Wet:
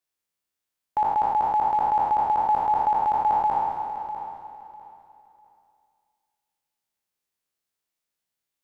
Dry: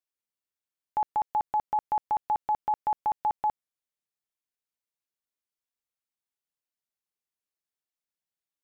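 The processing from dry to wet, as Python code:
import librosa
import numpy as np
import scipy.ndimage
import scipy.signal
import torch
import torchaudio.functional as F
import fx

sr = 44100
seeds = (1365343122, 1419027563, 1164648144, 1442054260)

y = fx.spec_trails(x, sr, decay_s=1.97)
y = fx.echo_feedback(y, sr, ms=649, feedback_pct=24, wet_db=-11)
y = F.gain(torch.from_numpy(y), 3.5).numpy()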